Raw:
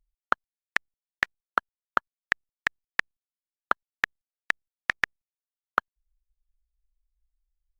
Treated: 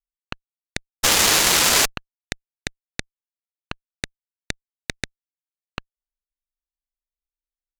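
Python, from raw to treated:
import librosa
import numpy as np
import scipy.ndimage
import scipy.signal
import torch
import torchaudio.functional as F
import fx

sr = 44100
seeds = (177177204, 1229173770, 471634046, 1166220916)

y = fx.tone_stack(x, sr, knobs='10-0-10')
y = fx.spec_paint(y, sr, seeds[0], shape='noise', start_s=1.03, length_s=0.83, low_hz=290.0, high_hz=7800.0, level_db=-17.0)
y = fx.cheby_harmonics(y, sr, harmonics=(4, 5, 7), levels_db=(-7, -23, -13), full_scale_db=-4.5)
y = y * 10.0 ** (-1.5 / 20.0)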